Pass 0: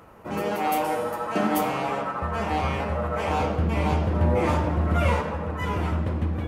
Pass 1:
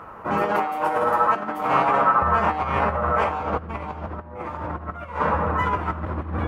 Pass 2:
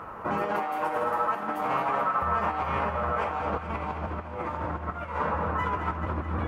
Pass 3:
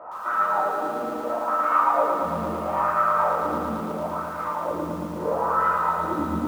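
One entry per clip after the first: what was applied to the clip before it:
high shelf 3700 Hz -9.5 dB; negative-ratio compressor -28 dBFS, ratio -0.5; bell 1200 Hz +11.5 dB 1.4 oct
compressor 2.5:1, threshold -28 dBFS, peak gain reduction 10 dB; thinning echo 0.215 s, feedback 74%, high-pass 680 Hz, level -9 dB
shoebox room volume 390 m³, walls furnished, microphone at 2.7 m; wah 0.75 Hz 240–1400 Hz, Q 3.8; lo-fi delay 0.113 s, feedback 80%, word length 9-bit, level -5 dB; gain +5.5 dB

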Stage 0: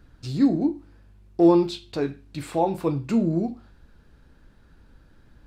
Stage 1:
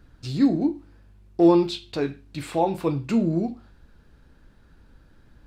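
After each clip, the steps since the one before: dynamic EQ 2900 Hz, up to +4 dB, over -47 dBFS, Q 0.88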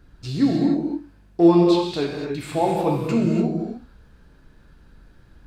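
non-linear reverb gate 0.32 s flat, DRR -0.5 dB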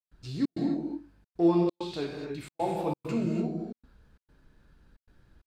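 step gate ".xxx.xxxxxx" 133 bpm -60 dB; gain -9 dB

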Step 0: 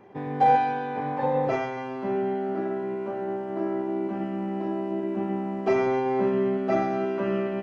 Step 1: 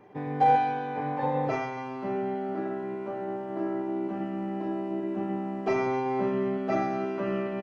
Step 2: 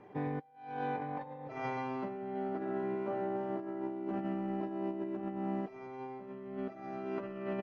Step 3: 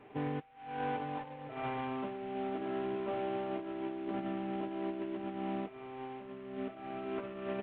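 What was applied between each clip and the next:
comb 6.7 ms, depth 32%; gain -2.5 dB
negative-ratio compressor -33 dBFS, ratio -0.5; air absorption 71 m; gain -5 dB
CVSD 16 kbps; notch comb 180 Hz; gain +1 dB

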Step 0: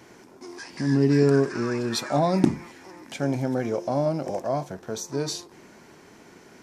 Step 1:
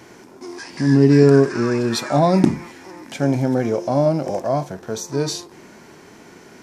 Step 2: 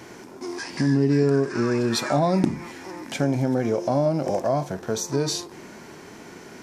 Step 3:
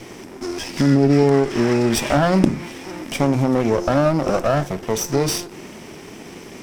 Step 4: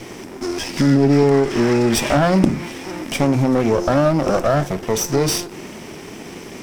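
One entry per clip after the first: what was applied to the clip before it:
harmonic-percussive split harmonic +4 dB; gain +3.5 dB
compressor 2.5:1, threshold -22 dBFS, peak gain reduction 10 dB; gain +1.5 dB
minimum comb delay 0.36 ms; gain +6 dB
in parallel at -4.5 dB: overloaded stage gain 19.5 dB; on the sum: bit-crush 10-bit; gain -1 dB

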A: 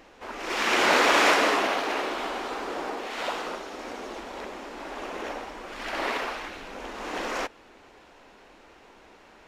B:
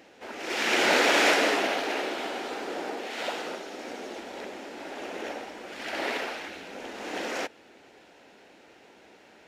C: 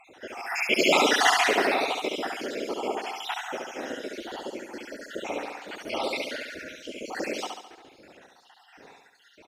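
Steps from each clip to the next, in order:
HPF 120 Hz 12 dB/oct; bell 1100 Hz -10 dB 0.44 oct
random spectral dropouts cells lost 74%; on a send: feedback echo 70 ms, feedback 52%, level -4 dB; on the sum: gain +5.5 dB

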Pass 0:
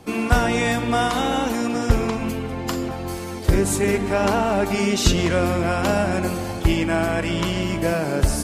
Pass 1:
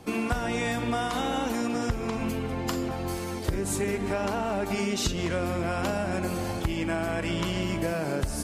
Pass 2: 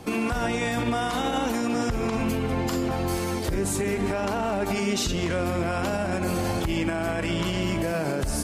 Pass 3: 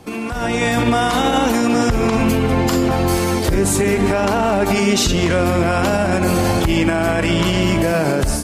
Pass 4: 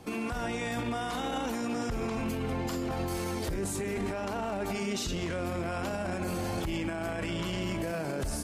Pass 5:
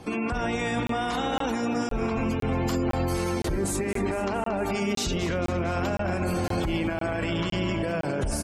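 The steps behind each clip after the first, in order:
compressor, threshold -22 dBFS, peak gain reduction 12 dB; gain -2.5 dB
limiter -22.5 dBFS, peak gain reduction 8 dB; gain +5.5 dB
AGC gain up to 10 dB
limiter -17.5 dBFS, peak gain reduction 10.5 dB; gain -7.5 dB
spectral gate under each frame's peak -30 dB strong; feedback echo 0.229 s, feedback 59%, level -13 dB; crackling interface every 0.51 s, samples 1024, zero, from 0.87; gain +5.5 dB

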